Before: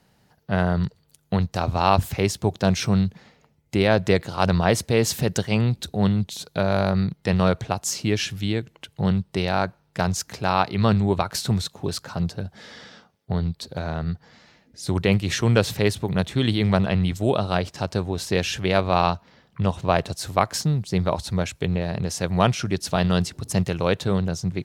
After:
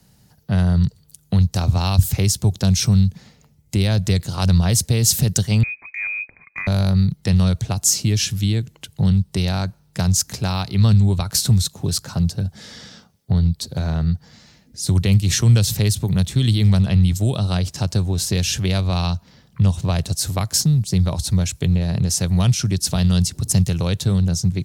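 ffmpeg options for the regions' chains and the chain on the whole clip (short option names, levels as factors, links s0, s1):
-filter_complex "[0:a]asettb=1/sr,asplit=3[s0][s1][s2];[s0]atrim=end=5.634[s3];[s1]atrim=start=5.63:end=6.67,asetpts=PTS-STARTPTS,afade=t=in:d=0.004:c=qsin,afade=t=out:st=1.036:d=0.004:c=qsin,lowpass=f=2200:t=q:w=0.5098,lowpass=f=2200:t=q:w=0.6013,lowpass=f=2200:t=q:w=0.9,lowpass=f=2200:t=q:w=2.563,afreqshift=-2600,acompressor=threshold=0.0355:ratio=2:attack=3.2:release=140:knee=1:detection=peak[s4];[s2]atrim=start=6.666[s5];[s3][s4]acrossfade=d=0.004:c1=hsin:c2=qsin[s6];[s6][s5]acrossfade=d=0.004:c1=qsin:c2=hsin,bass=f=250:g=11,treble=f=4000:g=13,acrossover=split=150|3000[s7][s8][s9];[s8]acompressor=threshold=0.0794:ratio=6[s10];[s7][s10][s9]amix=inputs=3:normalize=0,volume=0.891"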